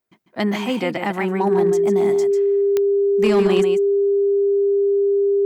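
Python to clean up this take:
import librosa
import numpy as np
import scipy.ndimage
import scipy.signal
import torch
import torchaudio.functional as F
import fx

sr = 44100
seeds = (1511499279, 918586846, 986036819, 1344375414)

y = fx.fix_declip(x, sr, threshold_db=-10.0)
y = fx.fix_declick_ar(y, sr, threshold=10.0)
y = fx.notch(y, sr, hz=400.0, q=30.0)
y = fx.fix_echo_inverse(y, sr, delay_ms=146, level_db=-7.5)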